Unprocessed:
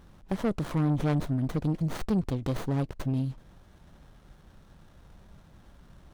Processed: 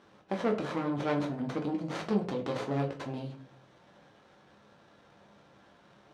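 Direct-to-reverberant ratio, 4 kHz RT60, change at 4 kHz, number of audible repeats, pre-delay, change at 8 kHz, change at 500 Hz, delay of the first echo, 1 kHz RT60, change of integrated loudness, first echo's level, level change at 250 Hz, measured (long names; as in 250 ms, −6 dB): 1.0 dB, 0.30 s, +1.0 dB, no echo audible, 9 ms, −5.0 dB, +2.5 dB, no echo audible, 0.40 s, −3.5 dB, no echo audible, −3.5 dB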